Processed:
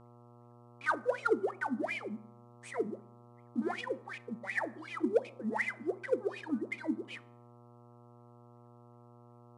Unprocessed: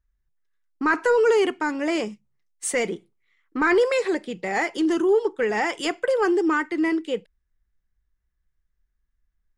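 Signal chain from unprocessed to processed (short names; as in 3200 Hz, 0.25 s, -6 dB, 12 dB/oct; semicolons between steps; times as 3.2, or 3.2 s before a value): block floating point 3-bit; notch 2700 Hz, Q 7; wah 2.7 Hz 210–2600 Hz, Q 16; reverb removal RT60 0.98 s; reverb RT60 0.65 s, pre-delay 4 ms, DRR 16 dB; dynamic EQ 1400 Hz, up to -3 dB, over -39 dBFS, Q 1.6; in parallel at -5 dB: soft clip -29 dBFS, distortion -11 dB; on the sum: high shelf 2100 Hz +3.5 dB; buzz 120 Hz, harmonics 11, -57 dBFS -4 dB/oct; IMA ADPCM 88 kbps 22050 Hz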